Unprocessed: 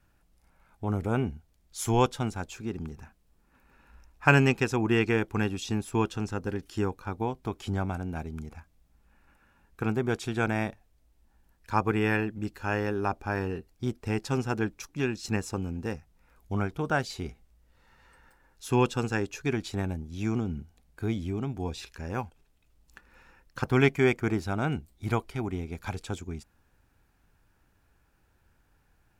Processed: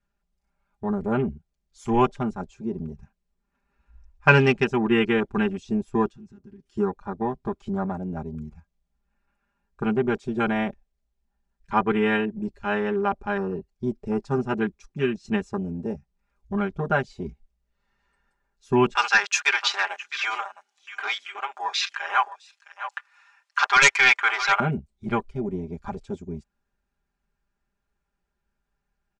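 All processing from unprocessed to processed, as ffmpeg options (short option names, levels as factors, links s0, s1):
-filter_complex "[0:a]asettb=1/sr,asplit=3[s0][s1][s2];[s0]atrim=end=6.074[s3];[s1]atrim=start=6.07:end=6.77,asetpts=PTS-STARTPTS,afade=t=in:d=0.004:c=qsin,afade=t=out:st=0.696:d=0.004:c=qsin,acompressor=threshold=0.00562:ratio=4:attack=3.2:release=140:knee=1:detection=peak,asoftclip=type=hard:threshold=0.0112[s4];[s2]atrim=start=6.766[s5];[s3][s4]acrossfade=d=0.004:c1=hsin:c2=qsin[s6];[s6][s5]acrossfade=d=0.004:c1=qsin:c2=hsin,asettb=1/sr,asplit=3[s7][s8][s9];[s7]atrim=end=18.954[s10];[s8]atrim=start=18.95:end=24.6,asetpts=PTS-STARTPTS,afade=t=in:d=0.004:c=qsin,afade=t=out:st=5.646:d=0.004:c=qsin,highpass=f=910:w=0.5412,highpass=f=910:w=1.3066,aeval=exprs='0.266*sin(PI/2*3.16*val(0)/0.266)':c=same,aecho=1:1:659:0.266,atrim=end_sample=249165[s11];[s9]atrim=start=24.596[s12];[s10][s11]acrossfade=d=0.004:c1=hsin:c2=qsin[s13];[s13][s12]acrossfade=d=0.004:c1=qsin:c2=hsin,afwtdn=0.0141,lowpass=f=8300:w=0.5412,lowpass=f=8300:w=1.3066,aecho=1:1:5:0.96,volume=1.19"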